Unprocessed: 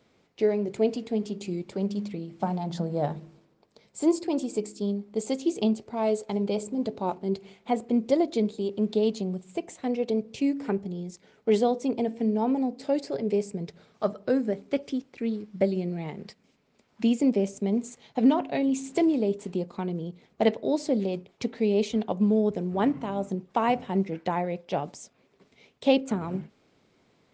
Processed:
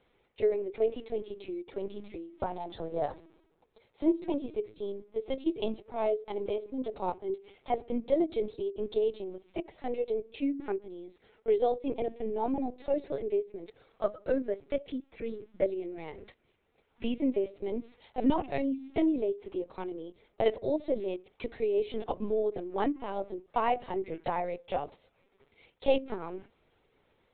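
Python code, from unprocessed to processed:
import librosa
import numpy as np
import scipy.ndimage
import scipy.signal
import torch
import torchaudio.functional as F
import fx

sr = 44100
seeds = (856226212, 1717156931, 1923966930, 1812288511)

y = scipy.signal.sosfilt(scipy.signal.butter(4, 270.0, 'highpass', fs=sr, output='sos'), x)
y = fx.lpc_vocoder(y, sr, seeds[0], excitation='pitch_kept', order=16)
y = F.gain(torch.from_numpy(y), -3.0).numpy()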